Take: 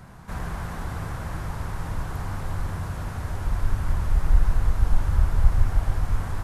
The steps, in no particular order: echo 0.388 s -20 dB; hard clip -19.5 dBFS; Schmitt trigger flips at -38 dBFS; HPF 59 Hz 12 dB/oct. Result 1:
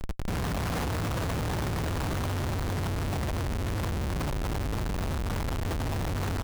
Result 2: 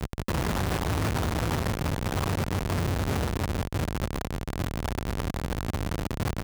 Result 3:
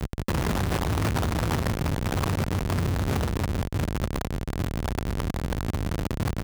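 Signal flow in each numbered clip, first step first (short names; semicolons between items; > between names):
HPF > hard clip > echo > Schmitt trigger; echo > hard clip > Schmitt trigger > HPF; echo > Schmitt trigger > HPF > hard clip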